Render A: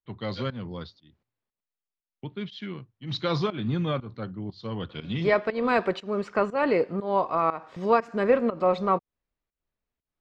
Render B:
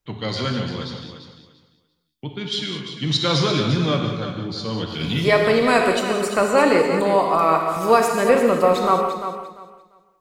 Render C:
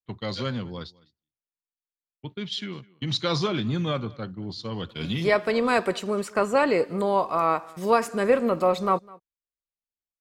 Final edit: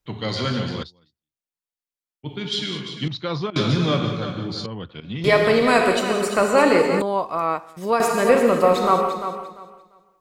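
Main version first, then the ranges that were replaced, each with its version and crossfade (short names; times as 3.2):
B
0.83–2.26 from C
3.08–3.56 from A
4.66–5.24 from A
7.02–8 from C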